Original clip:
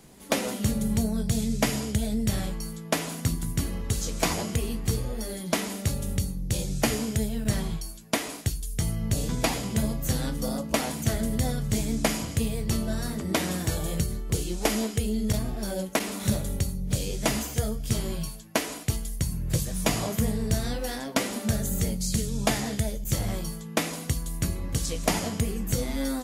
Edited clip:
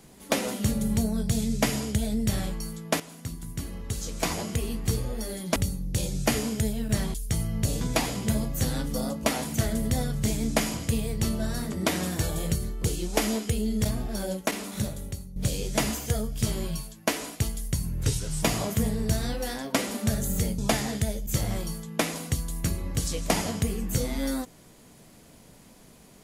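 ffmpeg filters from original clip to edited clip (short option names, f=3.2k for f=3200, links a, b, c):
-filter_complex "[0:a]asplit=8[a][b][c][d][e][f][g][h];[a]atrim=end=3,asetpts=PTS-STARTPTS,afade=t=out:st=2.996:d=0.004:c=hsin:silence=0.237137[i];[b]atrim=start=3:end=5.562,asetpts=PTS-STARTPTS,afade=t=in:d=1.89:silence=0.237137[j];[c]atrim=start=6.118:end=7.702[k];[d]atrim=start=8.618:end=16.84,asetpts=PTS-STARTPTS,afade=t=out:st=7.102:d=1.12:silence=0.251189[l];[e]atrim=start=16.84:end=19.514,asetpts=PTS-STARTPTS,afade=t=in:d=0.004:c=hsin:silence=0.251189[m];[f]atrim=start=19.51:end=19.84,asetpts=PTS-STARTPTS,asetrate=37044,aresample=44100[n];[g]atrim=start=19.836:end=22.002[o];[h]atrim=start=22.358[p];[i][j]concat=n=2:v=0:a=1[q];[q][k]acrossfade=d=0.004:c1=hsin:c2=hsin[r];[l][m]concat=n=2:v=0:a=1[s];[r][s]acrossfade=d=0.004:c1=hsin:c2=hsin[t];[t][n]acrossfade=d=0.004:c1=hsin:c2=hsin[u];[u][o]acrossfade=d=0.004:c1=hsin:c2=hsin[v];[v][p]acrossfade=d=0.004:c1=hsin:c2=hsin"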